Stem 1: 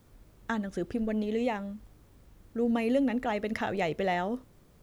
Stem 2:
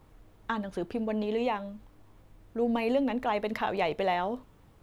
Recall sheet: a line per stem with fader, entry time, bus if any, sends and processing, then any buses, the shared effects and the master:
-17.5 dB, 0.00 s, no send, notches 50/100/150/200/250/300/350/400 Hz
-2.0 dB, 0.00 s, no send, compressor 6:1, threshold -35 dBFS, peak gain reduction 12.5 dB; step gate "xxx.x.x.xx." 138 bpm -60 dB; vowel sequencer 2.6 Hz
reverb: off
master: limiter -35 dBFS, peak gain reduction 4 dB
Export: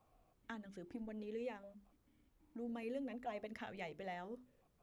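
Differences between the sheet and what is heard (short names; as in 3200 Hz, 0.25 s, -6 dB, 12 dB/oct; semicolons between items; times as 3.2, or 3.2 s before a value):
stem 2: polarity flipped; master: missing limiter -35 dBFS, peak gain reduction 4 dB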